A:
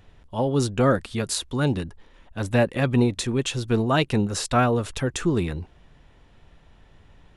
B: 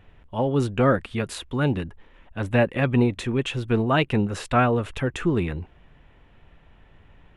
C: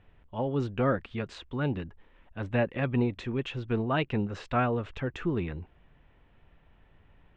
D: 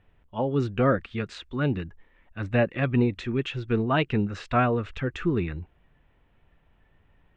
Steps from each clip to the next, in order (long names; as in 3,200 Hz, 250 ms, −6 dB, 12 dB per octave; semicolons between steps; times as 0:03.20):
high shelf with overshoot 3,600 Hz −9 dB, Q 1.5
Bessel low-pass filter 4,200 Hz, order 8; level −7 dB
noise reduction from a noise print of the clip's start 7 dB; level +4.5 dB